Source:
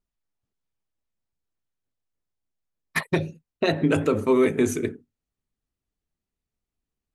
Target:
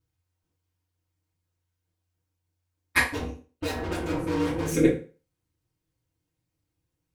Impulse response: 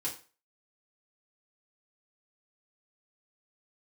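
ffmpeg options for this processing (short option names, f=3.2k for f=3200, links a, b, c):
-filter_complex "[0:a]asettb=1/sr,asplit=3[a][b][c];[a]atrim=end=3.114[d];[b]atrim=start=3.11:end=4.74,asetpts=PTS-STARTPTS,afade=t=in:d=0.004:c=qsin,afade=t=out:st=1.626:d=0.004:c=qsin,aeval=exprs='(tanh(50.1*val(0)+0.65)-tanh(0.65))/50.1':c=same[e];[c]atrim=start=4.736[f];[d][e]acrossfade=d=0.004:c1=hsin:c2=qsin[g];[g][f]acrossfade=d=0.004:c1=qsin:c2=hsin,aeval=exprs='val(0)*sin(2*PI*89*n/s)':c=same[h];[1:a]atrim=start_sample=2205[i];[h][i]afir=irnorm=-1:irlink=0,volume=6dB"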